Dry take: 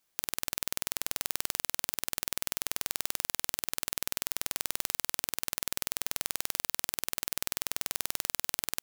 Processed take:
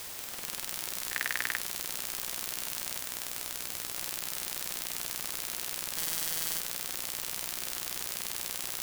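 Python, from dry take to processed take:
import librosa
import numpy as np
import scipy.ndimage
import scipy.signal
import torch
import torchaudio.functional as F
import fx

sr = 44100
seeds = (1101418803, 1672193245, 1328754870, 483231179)

p1 = x + fx.echo_split(x, sr, split_hz=2200.0, low_ms=151, high_ms=260, feedback_pct=52, wet_db=-4.0, dry=0)
p2 = fx.tube_stage(p1, sr, drive_db=18.0, bias=0.6, at=(2.98, 3.95))
p3 = np.sign(p2) * np.maximum(np.abs(p2) - 10.0 ** (-31.0 / 20.0), 0.0)
p4 = fx.peak_eq(p3, sr, hz=1800.0, db=13.0, octaves=0.51, at=(1.11, 1.58), fade=0.02)
p5 = np.clip(10.0 ** (20.5 / 20.0) * p4, -1.0, 1.0) / 10.0 ** (20.5 / 20.0)
p6 = fx.room_flutter(p5, sr, wall_m=9.4, rt60_s=1.3, at=(5.96, 6.59), fade=0.02)
p7 = fx.quant_dither(p6, sr, seeds[0], bits=8, dither='triangular')
y = F.gain(torch.from_numpy(p7), 6.5).numpy()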